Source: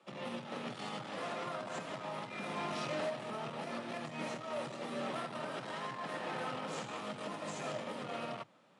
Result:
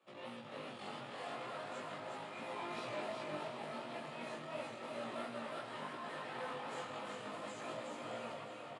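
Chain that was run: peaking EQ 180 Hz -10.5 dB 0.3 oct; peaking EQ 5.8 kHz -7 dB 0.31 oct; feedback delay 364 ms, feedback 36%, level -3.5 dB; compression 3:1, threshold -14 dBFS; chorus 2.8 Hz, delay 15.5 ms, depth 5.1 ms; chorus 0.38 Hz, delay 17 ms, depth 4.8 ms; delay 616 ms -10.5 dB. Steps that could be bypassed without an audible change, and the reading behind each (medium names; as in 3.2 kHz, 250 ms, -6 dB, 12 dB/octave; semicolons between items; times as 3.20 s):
compression, threshold -14 dBFS: peak at its input -26.0 dBFS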